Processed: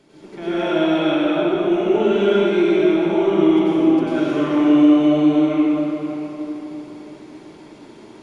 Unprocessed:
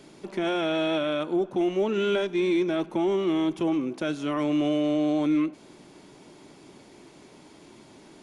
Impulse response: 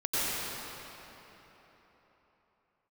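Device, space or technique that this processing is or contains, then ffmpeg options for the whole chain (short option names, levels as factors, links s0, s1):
swimming-pool hall: -filter_complex "[1:a]atrim=start_sample=2205[s0];[0:a][s0]afir=irnorm=-1:irlink=0,highshelf=f=5700:g=-7,volume=0.668"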